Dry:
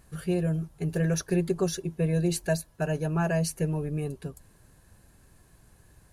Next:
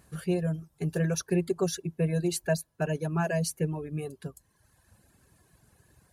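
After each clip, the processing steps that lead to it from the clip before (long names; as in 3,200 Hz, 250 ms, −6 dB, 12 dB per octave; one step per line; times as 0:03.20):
reverb reduction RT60 1.1 s
high-pass filter 71 Hz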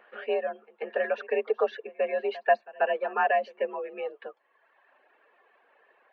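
single-sideband voice off tune +53 Hz 420–2,800 Hz
echo ahead of the sound 138 ms −21 dB
level +7 dB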